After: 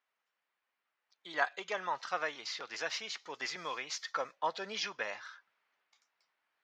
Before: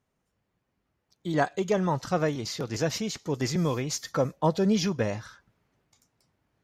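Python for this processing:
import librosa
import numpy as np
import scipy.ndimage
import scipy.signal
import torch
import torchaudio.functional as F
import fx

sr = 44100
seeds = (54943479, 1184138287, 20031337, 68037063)

y = scipy.signal.sosfilt(scipy.signal.butter(2, 1300.0, 'highpass', fs=sr, output='sos'), x)
y = fx.air_absorb(y, sr, metres=190.0)
y = y * librosa.db_to_amplitude(3.0)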